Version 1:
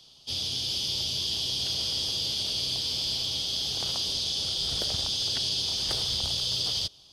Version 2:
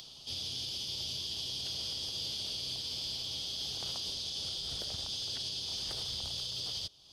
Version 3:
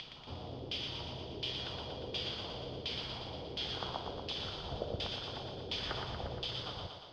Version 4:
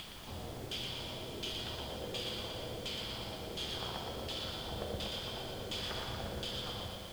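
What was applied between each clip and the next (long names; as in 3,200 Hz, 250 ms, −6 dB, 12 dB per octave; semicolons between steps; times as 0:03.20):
upward compression, threshold −33 dBFS; brickwall limiter −21.5 dBFS, peak gain reduction 5.5 dB; level −7 dB
tuned comb filter 480 Hz, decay 0.56 s; auto-filter low-pass saw down 1.4 Hz 390–2,500 Hz; on a send: feedback echo with a high-pass in the loop 118 ms, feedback 67%, high-pass 220 Hz, level −5 dB; on the sum: level +13 dB
asymmetric clip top −38.5 dBFS; convolution reverb RT60 2.5 s, pre-delay 5 ms, DRR 4 dB; background noise pink −51 dBFS; level −1 dB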